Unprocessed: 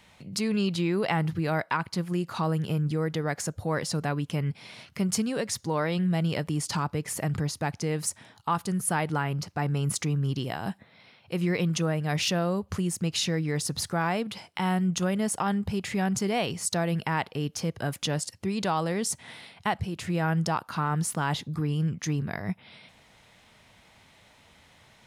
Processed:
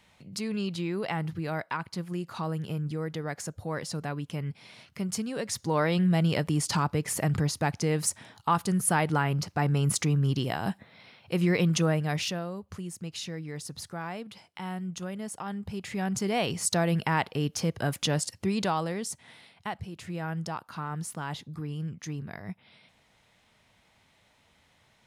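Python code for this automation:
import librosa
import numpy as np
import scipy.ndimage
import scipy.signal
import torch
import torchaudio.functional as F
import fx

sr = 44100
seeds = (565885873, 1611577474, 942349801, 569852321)

y = fx.gain(x, sr, db=fx.line((5.27, -5.0), (5.79, 2.0), (11.94, 2.0), (12.51, -9.5), (15.42, -9.5), (16.57, 1.5), (18.54, 1.5), (19.19, -7.5)))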